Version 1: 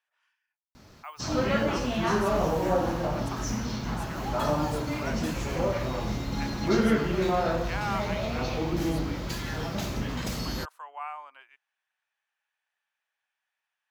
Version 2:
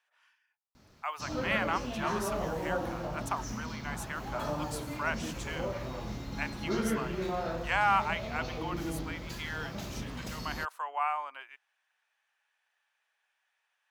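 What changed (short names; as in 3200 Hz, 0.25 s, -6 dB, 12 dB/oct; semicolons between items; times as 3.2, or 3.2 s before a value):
speech +6.5 dB; background -8.0 dB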